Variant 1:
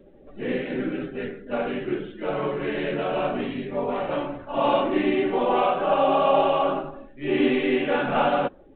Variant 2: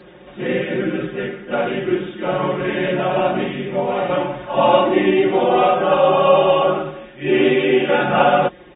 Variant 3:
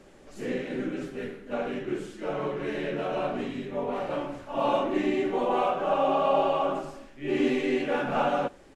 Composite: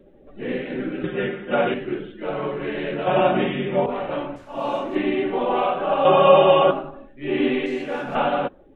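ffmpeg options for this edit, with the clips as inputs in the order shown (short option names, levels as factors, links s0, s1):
-filter_complex "[1:a]asplit=3[s0][s1][s2];[2:a]asplit=2[s3][s4];[0:a]asplit=6[s5][s6][s7][s8][s9][s10];[s5]atrim=end=1.042[s11];[s0]atrim=start=1.038:end=1.742[s12];[s6]atrim=start=1.738:end=3.072[s13];[s1]atrim=start=3.068:end=3.862[s14];[s7]atrim=start=3.858:end=4.362[s15];[s3]atrim=start=4.358:end=4.952[s16];[s8]atrim=start=4.948:end=6.052[s17];[s2]atrim=start=6.048:end=6.712[s18];[s9]atrim=start=6.708:end=7.662[s19];[s4]atrim=start=7.658:end=8.152[s20];[s10]atrim=start=8.148[s21];[s11][s12]acrossfade=d=0.004:c1=hsin:c2=hsin[s22];[s22][s13]acrossfade=d=0.004:c1=hsin:c2=hsin[s23];[s23][s14]acrossfade=d=0.004:c1=hsin:c2=hsin[s24];[s24][s15]acrossfade=d=0.004:c1=hsin:c2=hsin[s25];[s25][s16]acrossfade=d=0.004:c1=hsin:c2=hsin[s26];[s26][s17]acrossfade=d=0.004:c1=hsin:c2=hsin[s27];[s27][s18]acrossfade=d=0.004:c1=hsin:c2=hsin[s28];[s28][s19]acrossfade=d=0.004:c1=hsin:c2=hsin[s29];[s29][s20]acrossfade=d=0.004:c1=hsin:c2=hsin[s30];[s30][s21]acrossfade=d=0.004:c1=hsin:c2=hsin"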